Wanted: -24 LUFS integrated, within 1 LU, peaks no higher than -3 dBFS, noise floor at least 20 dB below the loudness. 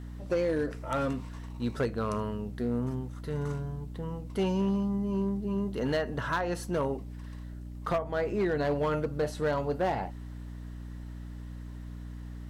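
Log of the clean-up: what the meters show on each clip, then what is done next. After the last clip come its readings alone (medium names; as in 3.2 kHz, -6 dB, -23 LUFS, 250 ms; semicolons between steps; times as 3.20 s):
clipped samples 1.1%; clipping level -22.5 dBFS; hum 60 Hz; highest harmonic 300 Hz; hum level -39 dBFS; loudness -31.5 LUFS; peak level -22.5 dBFS; loudness target -24.0 LUFS
-> clip repair -22.5 dBFS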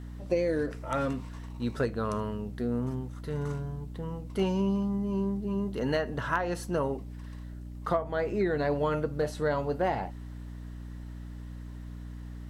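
clipped samples 0.0%; hum 60 Hz; highest harmonic 300 Hz; hum level -39 dBFS
-> hum notches 60/120/180/240/300 Hz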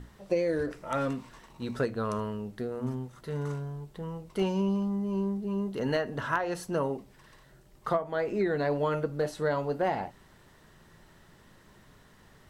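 hum not found; loudness -31.5 LUFS; peak level -14.5 dBFS; loudness target -24.0 LUFS
-> trim +7.5 dB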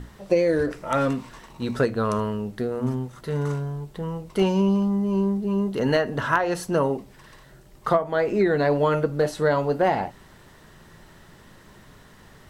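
loudness -24.0 LUFS; peak level -7.0 dBFS; noise floor -51 dBFS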